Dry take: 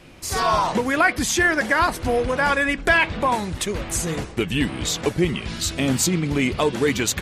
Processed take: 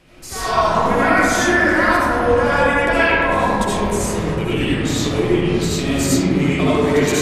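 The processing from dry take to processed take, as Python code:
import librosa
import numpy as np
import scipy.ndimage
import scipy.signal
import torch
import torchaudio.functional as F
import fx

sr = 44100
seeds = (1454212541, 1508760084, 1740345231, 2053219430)

y = fx.rev_freeverb(x, sr, rt60_s=3.1, hf_ratio=0.25, predelay_ms=40, drr_db=-10.0)
y = y * 10.0 ** (-6.0 / 20.0)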